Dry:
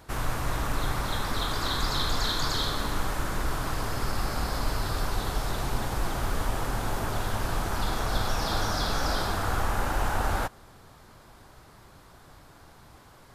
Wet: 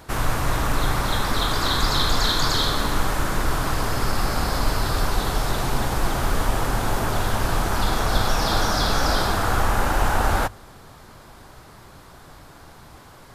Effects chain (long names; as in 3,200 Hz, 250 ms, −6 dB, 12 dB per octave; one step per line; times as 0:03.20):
mains-hum notches 50/100 Hz
level +7 dB